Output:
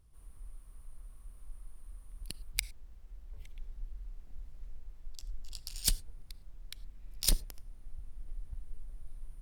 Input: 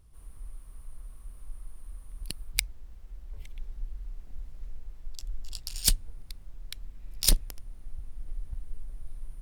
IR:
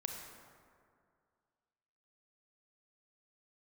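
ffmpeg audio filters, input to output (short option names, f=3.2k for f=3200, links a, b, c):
-filter_complex "[0:a]asplit=2[a][b];[1:a]atrim=start_sample=2205,atrim=end_sample=4410,asetrate=37926,aresample=44100[c];[b][c]afir=irnorm=-1:irlink=0,volume=-11dB[d];[a][d]amix=inputs=2:normalize=0,volume=-7.5dB"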